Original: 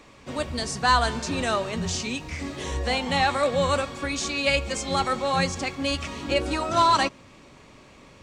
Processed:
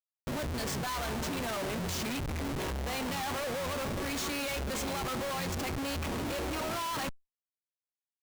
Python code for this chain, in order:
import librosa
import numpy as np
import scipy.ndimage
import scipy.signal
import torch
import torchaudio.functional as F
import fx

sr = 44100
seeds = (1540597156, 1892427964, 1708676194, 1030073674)

y = fx.schmitt(x, sr, flips_db=-34.5)
y = fx.env_flatten(y, sr, amount_pct=50)
y = y * librosa.db_to_amplitude(-8.5)